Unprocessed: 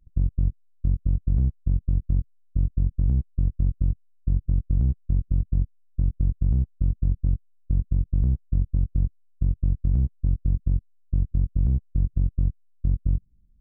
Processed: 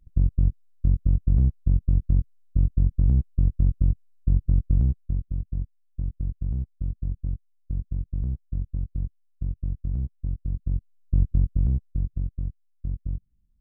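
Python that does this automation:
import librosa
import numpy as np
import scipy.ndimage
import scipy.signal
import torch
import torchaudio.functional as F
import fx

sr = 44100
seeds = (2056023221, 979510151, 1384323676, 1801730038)

y = fx.gain(x, sr, db=fx.line((4.73, 2.0), (5.31, -6.0), (10.49, -6.0), (11.24, 3.0), (12.39, -7.0)))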